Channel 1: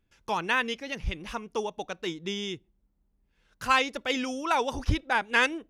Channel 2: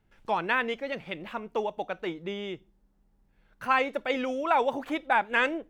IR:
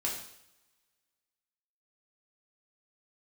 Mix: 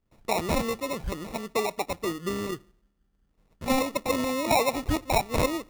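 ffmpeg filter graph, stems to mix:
-filter_complex "[0:a]volume=-3.5dB,asplit=2[a][b];[b]volume=-20dB[c];[1:a]agate=range=-33dB:threshold=-58dB:ratio=3:detection=peak,volume=0.5dB,asplit=2[d][e];[e]apad=whole_len=251354[f];[a][f]sidechaincompress=threshold=-30dB:ratio=8:attack=16:release=238[g];[2:a]atrim=start_sample=2205[h];[c][h]afir=irnorm=-1:irlink=0[i];[g][d][i]amix=inputs=3:normalize=0,acrusher=samples=28:mix=1:aa=0.000001"

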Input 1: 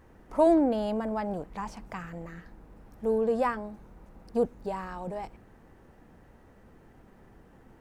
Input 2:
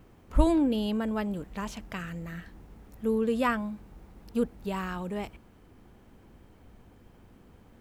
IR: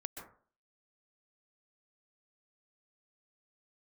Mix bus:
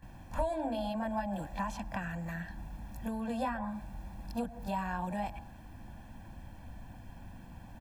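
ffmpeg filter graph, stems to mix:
-filter_complex "[0:a]volume=-10.5dB,asplit=2[a][b];[b]volume=-4dB[c];[1:a]acrossover=split=160[d][e];[e]acompressor=threshold=-33dB:ratio=6[f];[d][f]amix=inputs=2:normalize=0,adelay=23,volume=2dB[g];[2:a]atrim=start_sample=2205[h];[c][h]afir=irnorm=-1:irlink=0[i];[a][g][i]amix=inputs=3:normalize=0,aecho=1:1:1.2:0.96,acrossover=split=370|1400[j][k][l];[j]acompressor=threshold=-39dB:ratio=4[m];[k]acompressor=threshold=-32dB:ratio=4[n];[l]acompressor=threshold=-49dB:ratio=4[o];[m][n][o]amix=inputs=3:normalize=0"

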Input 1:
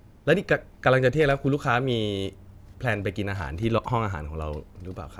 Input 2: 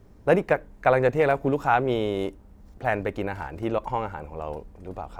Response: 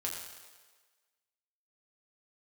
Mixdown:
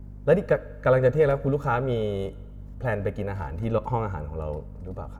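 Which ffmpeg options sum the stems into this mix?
-filter_complex "[0:a]lowpass=f=3.9k:p=1,volume=-2.5dB,asplit=2[a][b];[b]volume=-16dB[c];[1:a]highpass=180,aeval=exprs='val(0)+0.0178*(sin(2*PI*50*n/s)+sin(2*PI*2*50*n/s)/2+sin(2*PI*3*50*n/s)/3+sin(2*PI*4*50*n/s)/4+sin(2*PI*5*50*n/s)/5)':c=same,adelay=2.3,volume=-5dB,asplit=2[d][e];[e]volume=-18dB[f];[2:a]atrim=start_sample=2205[g];[c][f]amix=inputs=2:normalize=0[h];[h][g]afir=irnorm=-1:irlink=0[i];[a][d][i]amix=inputs=3:normalize=0,equalizer=f=3.3k:w=0.62:g=-10"

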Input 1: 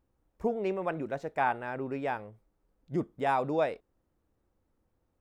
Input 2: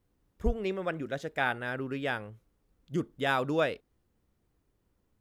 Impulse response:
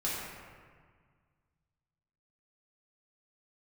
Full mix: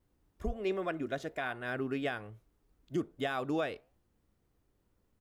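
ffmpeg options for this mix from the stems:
-filter_complex "[0:a]flanger=delay=6.6:depth=9.8:regen=78:speed=1.2:shape=triangular,volume=-4dB[a];[1:a]adelay=2.5,volume=-1dB[b];[a][b]amix=inputs=2:normalize=0,alimiter=limit=-23.5dB:level=0:latency=1:release=256"

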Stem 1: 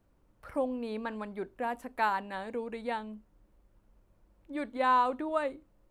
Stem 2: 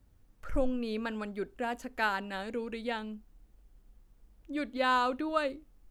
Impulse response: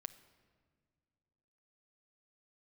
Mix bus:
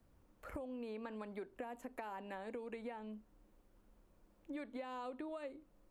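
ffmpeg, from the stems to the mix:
-filter_complex "[0:a]alimiter=level_in=1.5dB:limit=-24dB:level=0:latency=1:release=392,volume=-1.5dB,acrossover=split=170|830|2800[a][b][c][d];[a]acompressor=threshold=-56dB:ratio=4[e];[b]acompressor=threshold=-38dB:ratio=4[f];[c]acompressor=threshold=-42dB:ratio=4[g];[d]acompressor=threshold=-59dB:ratio=4[h];[e][f][g][h]amix=inputs=4:normalize=0,volume=-2dB,asplit=2[i][j];[1:a]highpass=f=47:w=0.5412,highpass=f=47:w=1.3066,volume=-7dB[k];[j]apad=whole_len=260356[l];[k][l]sidechaincompress=threshold=-45dB:ratio=8:attack=5.9:release=605[m];[i][m]amix=inputs=2:normalize=0,acompressor=threshold=-42dB:ratio=6"

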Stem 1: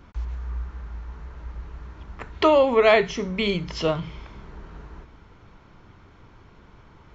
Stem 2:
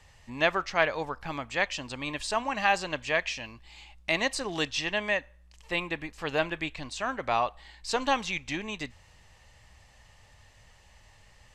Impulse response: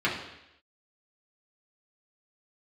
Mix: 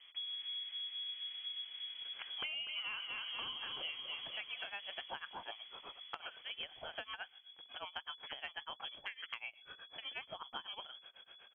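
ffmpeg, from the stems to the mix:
-filter_complex "[0:a]volume=-10dB,asplit=3[a][b][c];[b]volume=-7.5dB[d];[1:a]equalizer=f=570:t=o:w=0.94:g=-7.5,acompressor=threshold=-37dB:ratio=5,tremolo=f=8.1:d=0.95,adelay=2050,volume=2.5dB[e];[c]apad=whole_len=599343[f];[e][f]sidechaincompress=threshold=-35dB:ratio=8:attack=16:release=971[g];[d]aecho=0:1:244|488|732|976|1220|1464|1708:1|0.51|0.26|0.133|0.0677|0.0345|0.0176[h];[a][g][h]amix=inputs=3:normalize=0,lowpass=f=2.9k:t=q:w=0.5098,lowpass=f=2.9k:t=q:w=0.6013,lowpass=f=2.9k:t=q:w=0.9,lowpass=f=2.9k:t=q:w=2.563,afreqshift=-3400,acompressor=threshold=-40dB:ratio=10"

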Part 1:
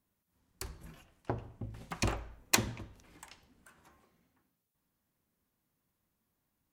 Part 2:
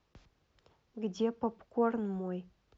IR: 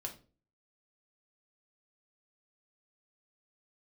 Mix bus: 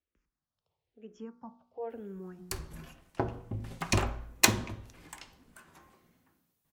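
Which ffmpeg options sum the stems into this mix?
-filter_complex "[0:a]adelay=1900,volume=2.5dB,asplit=2[a][b];[b]volume=-4.5dB[c];[1:a]asplit=2[d][e];[e]afreqshift=-1[f];[d][f]amix=inputs=2:normalize=1,volume=-2.5dB,afade=t=in:st=0.66:d=0.21:silence=0.473151,afade=t=in:st=1.67:d=0.52:silence=0.421697[g];[2:a]atrim=start_sample=2205[h];[c][h]afir=irnorm=-1:irlink=0[i];[a][g][i]amix=inputs=3:normalize=0,bandreject=f=60.26:t=h:w=4,bandreject=f=120.52:t=h:w=4,bandreject=f=180.78:t=h:w=4,bandreject=f=241.04:t=h:w=4,bandreject=f=301.3:t=h:w=4,bandreject=f=361.56:t=h:w=4,bandreject=f=421.82:t=h:w=4,bandreject=f=482.08:t=h:w=4,bandreject=f=542.34:t=h:w=4,bandreject=f=602.6:t=h:w=4,bandreject=f=662.86:t=h:w=4,bandreject=f=723.12:t=h:w=4,bandreject=f=783.38:t=h:w=4,bandreject=f=843.64:t=h:w=4,bandreject=f=903.9:t=h:w=4,bandreject=f=964.16:t=h:w=4,bandreject=f=1.02442k:t=h:w=4,bandreject=f=1.08468k:t=h:w=4,bandreject=f=1.14494k:t=h:w=4,bandreject=f=1.2052k:t=h:w=4,bandreject=f=1.26546k:t=h:w=4,bandreject=f=1.32572k:t=h:w=4,bandreject=f=1.38598k:t=h:w=4,bandreject=f=1.44624k:t=h:w=4,bandreject=f=1.5065k:t=h:w=4"

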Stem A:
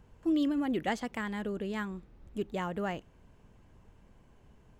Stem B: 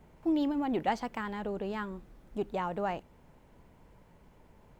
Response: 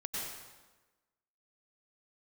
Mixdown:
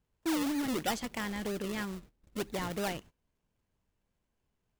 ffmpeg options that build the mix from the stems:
-filter_complex "[0:a]volume=31.5dB,asoftclip=hard,volume=-31.5dB,volume=-3dB[a];[1:a]bandreject=f=900:w=28,acrusher=samples=39:mix=1:aa=0.000001:lfo=1:lforange=39:lforate=3.1,volume=-9dB[b];[a][b]amix=inputs=2:normalize=0,agate=range=-20dB:threshold=-51dB:ratio=16:detection=peak,highshelf=f=2.1k:g=8.5"

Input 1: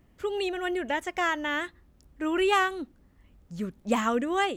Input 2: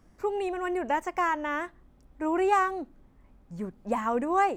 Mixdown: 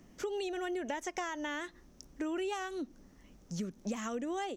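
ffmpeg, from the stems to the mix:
-filter_complex "[0:a]highpass=f=180:w=0.5412,highpass=f=180:w=1.3066,equalizer=f=5.9k:w=2.5:g=14.5,acompressor=threshold=-33dB:ratio=3,volume=2dB[a];[1:a]adelay=0.3,volume=-14.5dB[b];[a][b]amix=inputs=2:normalize=0,lowshelf=f=200:g=11,acompressor=threshold=-37dB:ratio=2.5"

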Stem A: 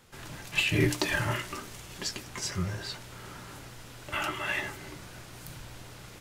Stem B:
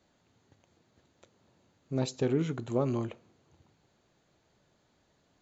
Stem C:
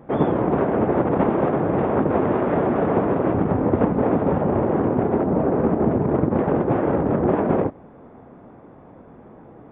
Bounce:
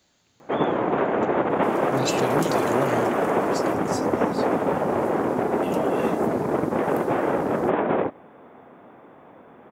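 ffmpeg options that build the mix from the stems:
-filter_complex "[0:a]highshelf=f=5.3k:g=8.5,adelay=1500,volume=-17.5dB[a];[1:a]volume=1dB[b];[2:a]highpass=f=370:p=1,adelay=400,volume=-0.5dB[c];[a][b][c]amix=inputs=3:normalize=0,highshelf=f=2.1k:g=11.5"

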